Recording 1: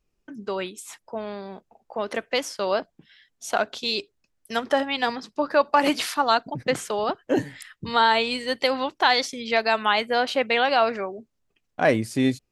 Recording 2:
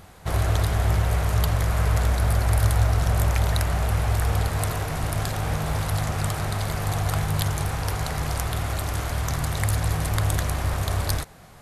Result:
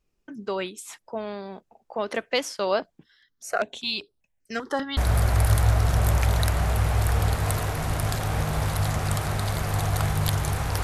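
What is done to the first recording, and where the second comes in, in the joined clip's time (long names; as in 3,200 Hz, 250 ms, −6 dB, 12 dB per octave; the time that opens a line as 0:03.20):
recording 1
0:03.03–0:04.97: step-sequenced phaser 5.1 Hz 660–6,800 Hz
0:04.97: continue with recording 2 from 0:02.10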